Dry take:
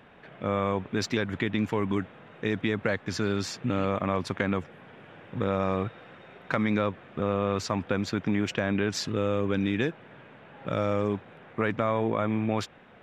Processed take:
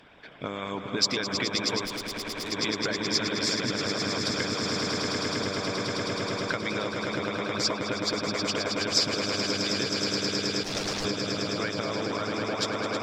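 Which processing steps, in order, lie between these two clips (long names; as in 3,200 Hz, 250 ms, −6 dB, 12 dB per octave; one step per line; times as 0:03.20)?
EQ curve with evenly spaced ripples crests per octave 1.7, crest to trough 6 dB
echo that builds up and dies away 106 ms, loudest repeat 8, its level −6.5 dB
0:10.63–0:11.05: gain into a clipping stage and back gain 27 dB
harmonic and percussive parts rebalanced harmonic −15 dB
downward compressor, threshold −30 dBFS, peak gain reduction 8.5 dB
parametric band 5,100 Hz +13 dB 1.3 octaves
0:01.85–0:02.52: tube saturation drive 33 dB, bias 0.7
level +3 dB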